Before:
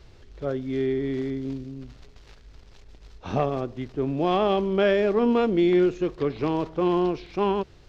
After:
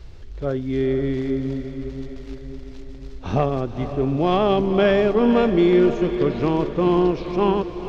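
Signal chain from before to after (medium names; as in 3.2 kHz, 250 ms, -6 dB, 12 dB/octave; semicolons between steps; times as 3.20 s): bass shelf 98 Hz +10 dB; echo that smears into a reverb 482 ms, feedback 57%, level -10 dB; trim +3 dB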